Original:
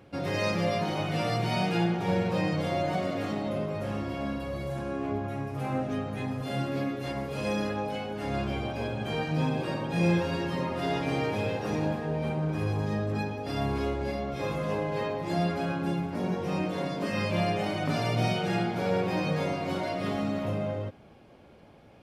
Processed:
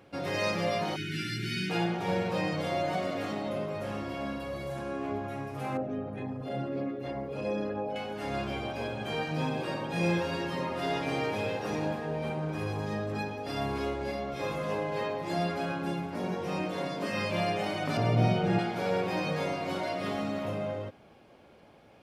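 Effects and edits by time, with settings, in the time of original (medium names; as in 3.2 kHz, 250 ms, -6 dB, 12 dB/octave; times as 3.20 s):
0.96–1.70 s: spectral selection erased 420–1300 Hz
5.77–7.96 s: resonances exaggerated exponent 1.5
17.97–18.59 s: tilt EQ -3 dB/octave
whole clip: bass shelf 240 Hz -7.5 dB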